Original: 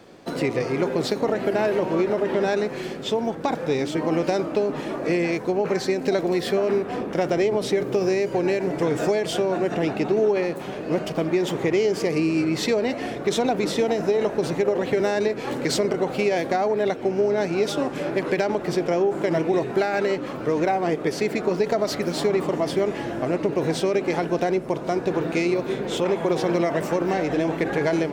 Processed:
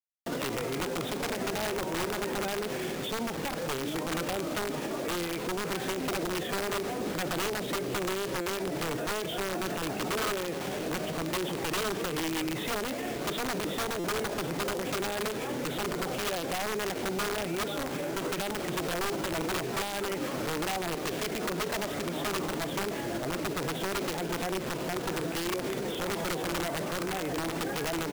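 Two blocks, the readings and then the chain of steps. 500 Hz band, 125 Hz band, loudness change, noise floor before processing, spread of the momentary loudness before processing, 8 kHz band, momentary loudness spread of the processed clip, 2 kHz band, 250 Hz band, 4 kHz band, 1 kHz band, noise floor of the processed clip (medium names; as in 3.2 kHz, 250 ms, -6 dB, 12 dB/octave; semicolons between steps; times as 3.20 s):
-12.0 dB, -7.5 dB, -8.5 dB, -33 dBFS, 4 LU, +1.0 dB, 2 LU, -3.5 dB, -9.5 dB, -1.5 dB, -6.0 dB, -35 dBFS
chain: resampled via 8 kHz; on a send: feedback echo behind a band-pass 275 ms, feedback 42%, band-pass 840 Hz, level -21.5 dB; on the sum: integer overflow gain 16 dB; bit crusher 6-bit; peak limiter -26 dBFS, peak gain reduction 10 dB; buffer glitch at 8.41/13.99 s, samples 256, times 8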